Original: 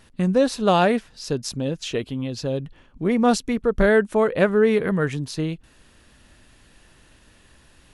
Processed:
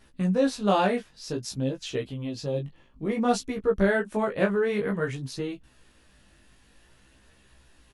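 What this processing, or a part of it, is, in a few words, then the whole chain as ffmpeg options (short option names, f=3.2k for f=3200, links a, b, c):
double-tracked vocal: -filter_complex "[0:a]asettb=1/sr,asplit=3[a][b][c];[a]atrim=end=2.234[d];[b]atrim=start=2.23:end=3.17,asetpts=PTS-STARTPTS,afade=t=in:d=0.004:c=qsin,afade=t=out:st=0.936:d=0.004:c=qsin,bandreject=f=1.5k:w=8[e];[c]atrim=start=3.166[f];[d][e]acrossfade=d=0.004:c1=hsin:c2=qsin[g];[g][f]acrossfade=d=0.004:c1=qsin:c2=hsin,asplit=2[h][i];[i]adelay=15,volume=-6dB[j];[h][j]amix=inputs=2:normalize=0,flanger=delay=15:depth=6:speed=0.55,volume=-3.5dB"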